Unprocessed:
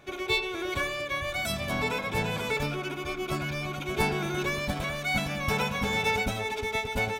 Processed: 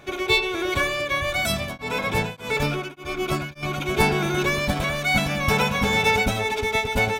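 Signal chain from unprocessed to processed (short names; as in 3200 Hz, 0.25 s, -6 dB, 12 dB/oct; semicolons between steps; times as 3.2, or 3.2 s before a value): 1.49–3.63 beating tremolo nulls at 1.7 Hz; gain +7 dB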